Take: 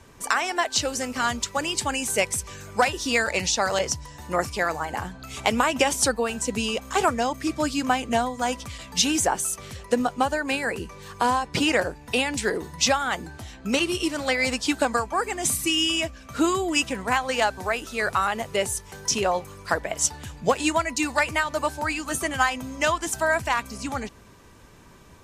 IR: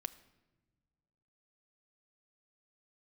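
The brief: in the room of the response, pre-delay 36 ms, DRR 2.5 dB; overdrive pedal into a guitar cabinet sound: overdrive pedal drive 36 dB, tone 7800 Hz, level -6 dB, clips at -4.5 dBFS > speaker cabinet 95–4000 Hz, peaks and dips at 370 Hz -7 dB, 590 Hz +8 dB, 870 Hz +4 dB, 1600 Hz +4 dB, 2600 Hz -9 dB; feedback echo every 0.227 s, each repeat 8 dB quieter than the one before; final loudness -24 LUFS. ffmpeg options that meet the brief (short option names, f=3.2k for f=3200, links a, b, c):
-filter_complex "[0:a]aecho=1:1:227|454|681|908|1135:0.398|0.159|0.0637|0.0255|0.0102,asplit=2[a][b];[1:a]atrim=start_sample=2205,adelay=36[c];[b][c]afir=irnorm=-1:irlink=0,volume=0dB[d];[a][d]amix=inputs=2:normalize=0,asplit=2[e][f];[f]highpass=f=720:p=1,volume=36dB,asoftclip=type=tanh:threshold=-4.5dB[g];[e][g]amix=inputs=2:normalize=0,lowpass=f=7.8k:p=1,volume=-6dB,highpass=95,equalizer=f=370:t=q:w=4:g=-7,equalizer=f=590:t=q:w=4:g=8,equalizer=f=870:t=q:w=4:g=4,equalizer=f=1.6k:t=q:w=4:g=4,equalizer=f=2.6k:t=q:w=4:g=-9,lowpass=f=4k:w=0.5412,lowpass=f=4k:w=1.3066,volume=-14dB"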